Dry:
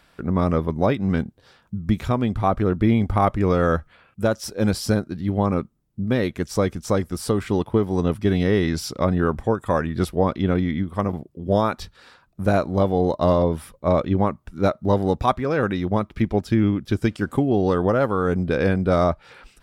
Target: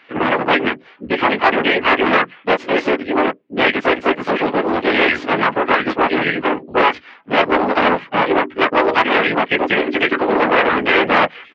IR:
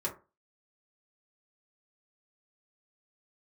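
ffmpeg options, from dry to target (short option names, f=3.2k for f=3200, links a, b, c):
-filter_complex "[0:a]afftfilt=real='re':imag='-im':win_size=2048:overlap=0.75,equalizer=f=2.4k:t=o:w=0.62:g=7.5,bandreject=f=60:t=h:w=6,bandreject=f=120:t=h:w=6,bandreject=f=180:t=h:w=6,bandreject=f=240:t=h:w=6,bandreject=f=300:t=h:w=6,bandreject=f=360:t=h:w=6,bandreject=f=420:t=h:w=6,bandreject=f=480:t=h:w=6,bandreject=f=540:t=h:w=6,asplit=2[a][b];[b]adelay=13,volume=-7dB[c];[a][c]amix=inputs=2:normalize=0,aeval=exprs='0.422*(cos(1*acos(clip(val(0)/0.422,-1,1)))-cos(1*PI/2))+0.00841*(cos(2*acos(clip(val(0)/0.422,-1,1)))-cos(2*PI/2))+0.0473*(cos(4*acos(clip(val(0)/0.422,-1,1)))-cos(4*PI/2))+0.0106*(cos(7*acos(clip(val(0)/0.422,-1,1)))-cos(7*PI/2))+0.0596*(cos(8*acos(clip(val(0)/0.422,-1,1)))-cos(8*PI/2))':c=same,flanger=delay=15.5:depth=5.6:speed=0.3,highpass=270,equalizer=f=290:t=q:w=4:g=9,equalizer=f=990:t=q:w=4:g=4,equalizer=f=2.1k:t=q:w=4:g=8,lowpass=f=3.2k:w=0.5412,lowpass=f=3.2k:w=1.3066,asplit=4[d][e][f][g];[e]asetrate=37084,aresample=44100,atempo=1.18921,volume=-2dB[h];[f]asetrate=55563,aresample=44100,atempo=0.793701,volume=-4dB[i];[g]asetrate=58866,aresample=44100,atempo=0.749154,volume=-8dB[j];[d][h][i][j]amix=inputs=4:normalize=0,acrossover=split=370|1300[k][l][m];[k]acompressor=threshold=-34dB:ratio=16[n];[l]asoftclip=type=tanh:threshold=-20.5dB[o];[n][o][m]amix=inputs=3:normalize=0,atempo=1.7,alimiter=level_in=12dB:limit=-1dB:release=50:level=0:latency=1,volume=-1dB"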